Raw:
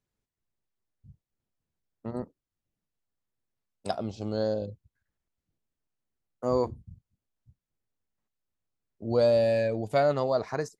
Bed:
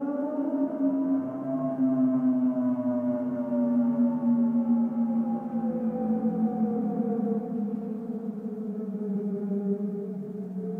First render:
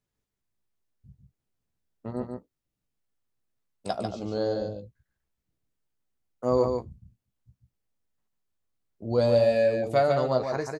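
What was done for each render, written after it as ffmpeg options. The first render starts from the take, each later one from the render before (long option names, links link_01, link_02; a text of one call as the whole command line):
ffmpeg -i in.wav -filter_complex "[0:a]asplit=2[link_01][link_02];[link_02]adelay=16,volume=-9dB[link_03];[link_01][link_03]amix=inputs=2:normalize=0,asplit=2[link_04][link_05];[link_05]aecho=0:1:145:0.562[link_06];[link_04][link_06]amix=inputs=2:normalize=0" out.wav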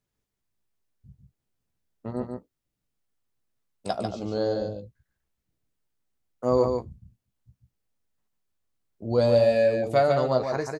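ffmpeg -i in.wav -af "volume=1.5dB" out.wav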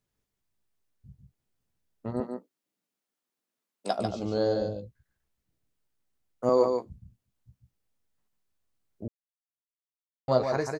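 ffmpeg -i in.wav -filter_complex "[0:a]asettb=1/sr,asplit=3[link_01][link_02][link_03];[link_01]atrim=end=2.204[link_04];[link_02]atrim=start=2.2:end=3.99,asetpts=PTS-STARTPTS,afade=type=in:duration=0.004:curve=qsin,afade=type=out:start_time=1.786:duration=0.004:curve=qsin,highpass=frequency=200:width=0.5412,highpass=frequency=200:width=1.3066[link_05];[link_03]atrim=start=3.986[link_06];[link_04][link_05]acrossfade=duration=0.004:curve1=hsin:curve2=qsin[link_07];[link_07][link_06]acrossfade=duration=0.004:curve1=qsin:curve2=hsin,asettb=1/sr,asplit=3[link_08][link_09][link_10];[link_08]atrim=end=6.494[link_11];[link_09]atrim=start=6.49:end=6.9,asetpts=PTS-STARTPTS,afade=type=in:duration=0.004:curve=qsin,afade=type=out:start_time=0.406:duration=0.004:curve=qsin,highpass=270[link_12];[link_10]atrim=start=6.896[link_13];[link_11][link_12]acrossfade=duration=0.004:curve1=hsin:curve2=qsin[link_14];[link_14][link_13]acrossfade=duration=0.004:curve1=qsin:curve2=hsin,asplit=3[link_15][link_16][link_17];[link_15]atrim=end=9.08,asetpts=PTS-STARTPTS,afade=type=out:start_time=9.076:duration=0.004:curve=hsin[link_18];[link_16]atrim=start=9.08:end=10.28,asetpts=PTS-STARTPTS,volume=0[link_19];[link_17]atrim=start=10.28,asetpts=PTS-STARTPTS,afade=type=in:duration=0.004:curve=hsin[link_20];[link_18][link_19][link_20]concat=n=3:v=0:a=1" out.wav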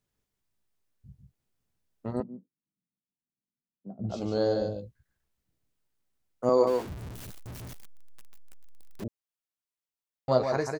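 ffmpeg -i in.wav -filter_complex "[0:a]asplit=3[link_01][link_02][link_03];[link_01]afade=type=out:start_time=2.21:duration=0.02[link_04];[link_02]lowpass=frequency=170:width_type=q:width=1.5,afade=type=in:start_time=2.21:duration=0.02,afade=type=out:start_time=4.09:duration=0.02[link_05];[link_03]afade=type=in:start_time=4.09:duration=0.02[link_06];[link_04][link_05][link_06]amix=inputs=3:normalize=0,asettb=1/sr,asplit=3[link_07][link_08][link_09];[link_07]atrim=end=6.674[link_10];[link_08]atrim=start=6.67:end=9.04,asetpts=PTS-STARTPTS,afade=type=in:duration=0.004:curve=qsin,afade=type=out:start_time=2.366:duration=0.004:curve=qsin,aeval=exprs='val(0)+0.5*0.0168*sgn(val(0))':channel_layout=same[link_11];[link_09]atrim=start=9.036[link_12];[link_10][link_11]acrossfade=duration=0.004:curve1=hsin:curve2=qsin[link_13];[link_13][link_12]acrossfade=duration=0.004:curve1=qsin:curve2=hsin" out.wav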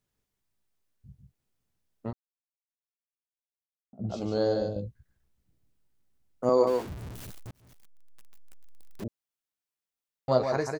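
ffmpeg -i in.wav -filter_complex "[0:a]asettb=1/sr,asplit=3[link_01][link_02][link_03];[link_01]atrim=end=4.764[link_04];[link_02]atrim=start=4.76:end=6.44,asetpts=PTS-STARTPTS,afade=type=in:duration=0.004:curve=qsin,afade=type=out:start_time=1.676:duration=0.004:curve=qsin,lowshelf=frequency=360:gain=9[link_05];[link_03]atrim=start=6.436[link_06];[link_04][link_05]acrossfade=duration=0.004:curve1=hsin:curve2=qsin[link_07];[link_07][link_06]acrossfade=duration=0.004:curve1=qsin:curve2=hsin,asplit=4[link_08][link_09][link_10][link_11];[link_08]atrim=end=2.13,asetpts=PTS-STARTPTS,afade=type=out:start_time=2.126:duration=0.004:curve=hsin[link_12];[link_09]atrim=start=2.13:end=3.93,asetpts=PTS-STARTPTS,volume=0[link_13];[link_10]atrim=start=3.93:end=7.51,asetpts=PTS-STARTPTS,afade=type=in:duration=0.004:curve=hsin,afade=type=out:start_time=3.576:duration=0.004:curve=hsin[link_14];[link_11]atrim=start=7.51,asetpts=PTS-STARTPTS,afade=type=in:duration=1.52:curve=qsin[link_15];[link_12][link_13][link_14][link_15]concat=n=4:v=0:a=1" out.wav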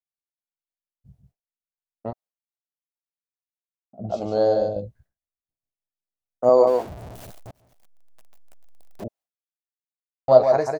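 ffmpeg -i in.wav -af "agate=range=-33dB:threshold=-52dB:ratio=3:detection=peak,equalizer=frequency=670:width_type=o:width=0.82:gain=13.5" out.wav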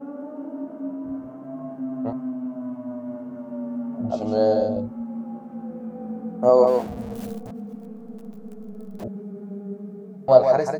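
ffmpeg -i in.wav -i bed.wav -filter_complex "[1:a]volume=-5.5dB[link_01];[0:a][link_01]amix=inputs=2:normalize=0" out.wav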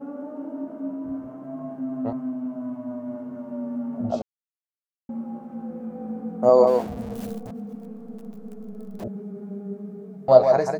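ffmpeg -i in.wav -filter_complex "[0:a]asplit=3[link_01][link_02][link_03];[link_01]atrim=end=4.22,asetpts=PTS-STARTPTS,afade=type=out:start_time=4.216:duration=0.004:curve=hsin[link_04];[link_02]atrim=start=4.22:end=5.09,asetpts=PTS-STARTPTS,volume=0[link_05];[link_03]atrim=start=5.09,asetpts=PTS-STARTPTS,afade=type=in:duration=0.004:curve=hsin[link_06];[link_04][link_05][link_06]concat=n=3:v=0:a=1" out.wav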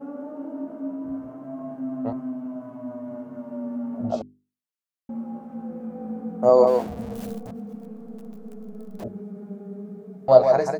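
ffmpeg -i in.wav -af "bandreject=frequency=50:width_type=h:width=6,bandreject=frequency=100:width_type=h:width=6,bandreject=frequency=150:width_type=h:width=6,bandreject=frequency=200:width_type=h:width=6,bandreject=frequency=250:width_type=h:width=6,bandreject=frequency=300:width_type=h:width=6,bandreject=frequency=350:width_type=h:width=6,bandreject=frequency=400:width_type=h:width=6" out.wav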